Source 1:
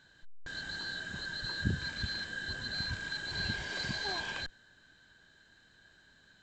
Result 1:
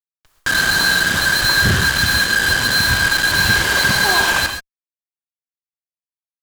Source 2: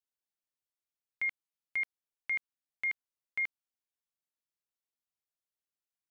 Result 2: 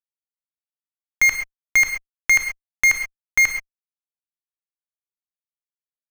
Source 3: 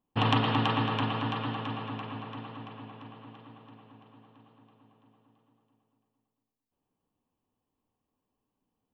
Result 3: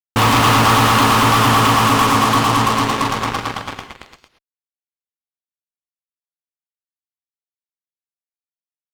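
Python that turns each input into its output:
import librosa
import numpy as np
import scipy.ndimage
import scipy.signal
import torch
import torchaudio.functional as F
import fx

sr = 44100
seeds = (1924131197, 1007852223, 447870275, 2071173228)

y = fx.peak_eq(x, sr, hz=1200.0, db=9.5, octaves=0.87)
y = fx.rider(y, sr, range_db=5, speed_s=2.0)
y = fx.fuzz(y, sr, gain_db=41.0, gate_db=-39.0)
y = fx.rev_gated(y, sr, seeds[0], gate_ms=150, shape='rising', drr_db=6.0)
y = y * librosa.db_to_amplitude(1.5)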